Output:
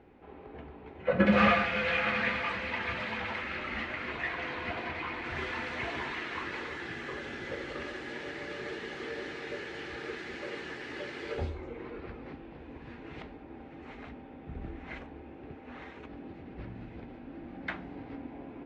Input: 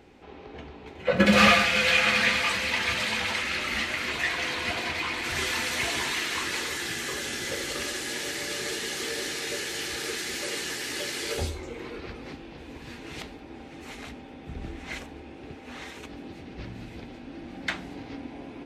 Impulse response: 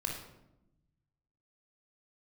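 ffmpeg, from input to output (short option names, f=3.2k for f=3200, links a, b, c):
-af "lowpass=1.9k,volume=-3.5dB"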